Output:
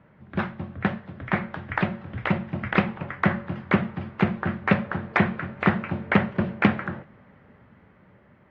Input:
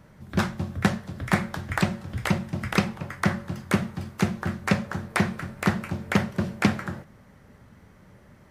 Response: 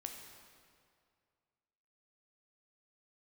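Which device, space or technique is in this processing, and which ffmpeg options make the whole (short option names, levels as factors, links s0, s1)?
action camera in a waterproof case: -af "highpass=f=130:p=1,lowpass=f=2800:w=0.5412,lowpass=f=2800:w=1.3066,dynaudnorm=f=590:g=7:m=2.66,volume=0.841" -ar 48000 -c:a aac -b:a 48k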